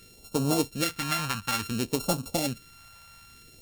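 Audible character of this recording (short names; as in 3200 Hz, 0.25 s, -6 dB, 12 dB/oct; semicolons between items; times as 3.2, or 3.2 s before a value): a buzz of ramps at a fixed pitch in blocks of 32 samples; phasing stages 2, 0.58 Hz, lowest notch 360–1800 Hz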